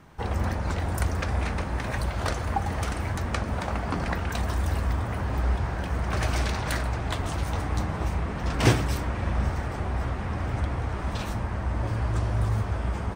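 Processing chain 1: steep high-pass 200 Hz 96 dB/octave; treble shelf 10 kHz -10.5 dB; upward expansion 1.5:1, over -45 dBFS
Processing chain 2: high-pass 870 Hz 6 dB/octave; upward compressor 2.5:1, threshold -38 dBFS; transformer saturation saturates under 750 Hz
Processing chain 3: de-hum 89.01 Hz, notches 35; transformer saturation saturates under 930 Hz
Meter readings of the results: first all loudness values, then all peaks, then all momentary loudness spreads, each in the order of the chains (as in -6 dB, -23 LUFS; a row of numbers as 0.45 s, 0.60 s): -39.0 LUFS, -36.5 LUFS, -32.0 LUFS; -9.5 dBFS, -14.0 dBFS, -9.0 dBFS; 9 LU, 7 LU, 3 LU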